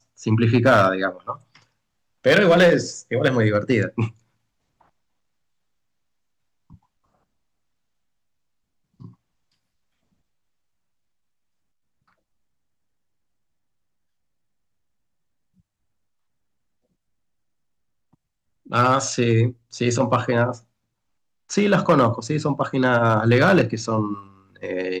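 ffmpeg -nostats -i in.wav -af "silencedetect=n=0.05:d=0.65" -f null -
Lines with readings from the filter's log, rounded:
silence_start: 1.33
silence_end: 2.26 | silence_duration: 0.93
silence_start: 4.08
silence_end: 18.72 | silence_duration: 14.65
silence_start: 20.53
silence_end: 21.51 | silence_duration: 0.98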